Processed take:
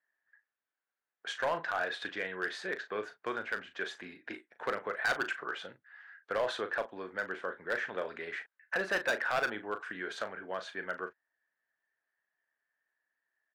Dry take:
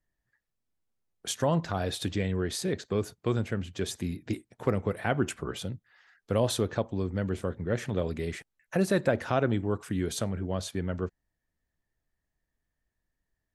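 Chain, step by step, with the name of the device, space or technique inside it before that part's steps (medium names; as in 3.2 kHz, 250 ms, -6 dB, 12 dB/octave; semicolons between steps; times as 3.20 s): megaphone (band-pass 650–2700 Hz; peaking EQ 1.6 kHz +11 dB 0.49 oct; hard clipper -25 dBFS, distortion -10 dB; doubling 38 ms -10 dB)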